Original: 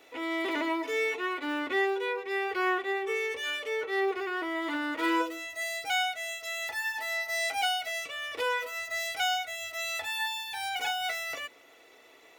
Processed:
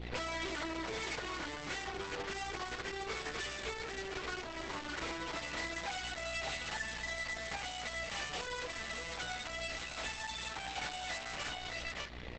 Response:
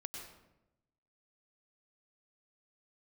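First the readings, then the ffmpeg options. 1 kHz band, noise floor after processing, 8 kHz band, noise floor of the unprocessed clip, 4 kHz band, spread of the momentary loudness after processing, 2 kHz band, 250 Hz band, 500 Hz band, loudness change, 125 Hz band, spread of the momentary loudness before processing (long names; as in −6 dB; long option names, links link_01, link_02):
−9.5 dB, −45 dBFS, −4.5 dB, −56 dBFS, −7.0 dB, 2 LU, −9.0 dB, −11.5 dB, −11.0 dB, −9.0 dB, can't be measured, 6 LU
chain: -filter_complex "[0:a]adynamicequalizer=threshold=0.00447:dfrequency=1300:dqfactor=3:tfrequency=1300:tqfactor=3:attack=5:release=100:ratio=0.375:range=1.5:mode=boostabove:tftype=bell,asoftclip=type=tanh:threshold=-31.5dB,flanger=delay=19.5:depth=5.3:speed=0.32,highpass=frequency=330:width=0.5412,highpass=frequency=330:width=1.3066,aecho=1:1:595:0.447,asplit=2[link_01][link_02];[1:a]atrim=start_sample=2205,asetrate=41013,aresample=44100[link_03];[link_02][link_03]afir=irnorm=-1:irlink=0,volume=-10dB[link_04];[link_01][link_04]amix=inputs=2:normalize=0,aresample=11025,aresample=44100,alimiter=level_in=9dB:limit=-24dB:level=0:latency=1:release=41,volume=-9dB,aeval=exprs='val(0)+0.00251*(sin(2*PI*60*n/s)+sin(2*PI*2*60*n/s)/2+sin(2*PI*3*60*n/s)/3+sin(2*PI*4*60*n/s)/4+sin(2*PI*5*60*n/s)/5)':channel_layout=same,aeval=exprs='0.0266*(cos(1*acos(clip(val(0)/0.0266,-1,1)))-cos(1*PI/2))+0.00841*(cos(6*acos(clip(val(0)/0.0266,-1,1)))-cos(6*PI/2))':channel_layout=same,acompressor=threshold=-43dB:ratio=5,volume=9.5dB" -ar 48000 -c:a libopus -b:a 10k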